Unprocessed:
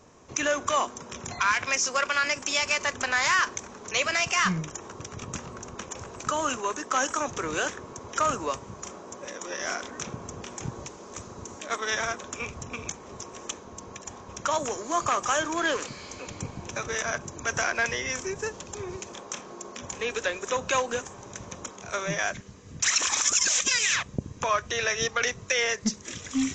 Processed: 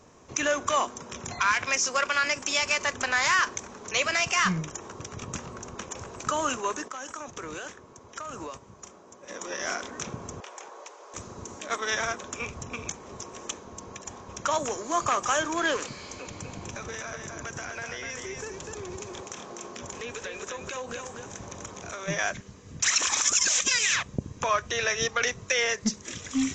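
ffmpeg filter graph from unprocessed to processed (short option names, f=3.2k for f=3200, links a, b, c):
-filter_complex "[0:a]asettb=1/sr,asplit=3[a][b][c];[a]atrim=end=6.884[d];[b]atrim=start=6.88:end=9.3,asetpts=PTS-STARTPTS,afade=t=in:d=0.004:c=qsin,afade=t=out:st=2.416:d=0.004:c=qsin,agate=range=-9dB:threshold=-37dB:ratio=16:release=100:detection=peak,acompressor=threshold=-33dB:ratio=16:attack=3.2:release=140:knee=1:detection=peak[e];[c]atrim=start=9.296[f];[d][e]acrossfade=d=0.004:c1=hsin:c2=qsin[g];[g][f]acrossfade=d=0.004:c1=qsin:c2=hsin,asettb=1/sr,asplit=3[h][i][j];[h]atrim=end=10.404[k];[i]atrim=start=10.4:end=11.14,asetpts=PTS-STARTPTS,afade=t=in:d=0.004:c=qsin,afade=t=out:st=0.736:d=0.004:c=qsin,highpass=f=490:w=0.5412,highpass=f=490:w=1.3066,highshelf=f=4.1k:g=-8.5[l];[j]atrim=start=11.136[m];[k][l]acrossfade=d=0.004:c1=hsin:c2=qsin[n];[n][m]acrossfade=d=0.004:c1=qsin:c2=hsin,asettb=1/sr,asplit=3[o][p][q];[o]atrim=end=16.164[r];[p]atrim=start=16.16:end=22.08,asetpts=PTS-STARTPTS,afade=t=in:d=0.004:c=qsin,afade=t=out:st=5.916:d=0.004:c=qsin,acompressor=threshold=-34dB:ratio=5:attack=3.2:release=140:knee=1:detection=peak,aecho=1:1:249:0.596,atrim=end_sample=261072[s];[q]atrim=start=22.076[t];[r][s]acrossfade=d=0.004:c1=hsin:c2=qsin[u];[u][t]acrossfade=d=0.004:c1=qsin:c2=hsin"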